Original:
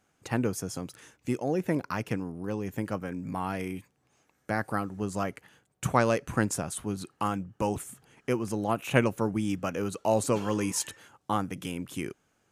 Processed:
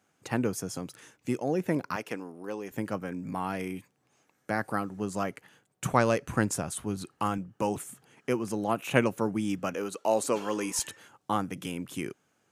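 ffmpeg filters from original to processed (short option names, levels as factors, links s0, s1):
-af "asetnsamples=n=441:p=0,asendcmd='1.96 highpass f 340;2.71 highpass f 120;5.93 highpass f 50;7.38 highpass f 130;9.74 highpass f 280;10.79 highpass f 110',highpass=110"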